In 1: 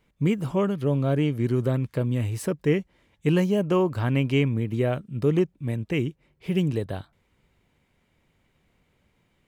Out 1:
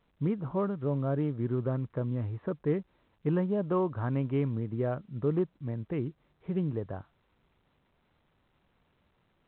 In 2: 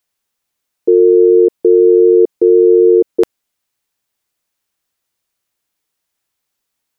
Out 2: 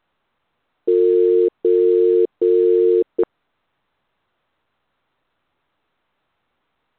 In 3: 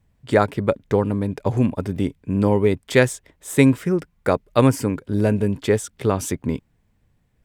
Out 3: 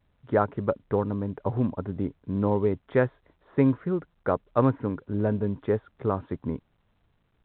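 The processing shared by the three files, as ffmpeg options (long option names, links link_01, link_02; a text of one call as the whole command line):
ffmpeg -i in.wav -af "highshelf=frequency=1900:width_type=q:width=1.5:gain=-13,volume=-7dB" -ar 8000 -c:a pcm_alaw out.wav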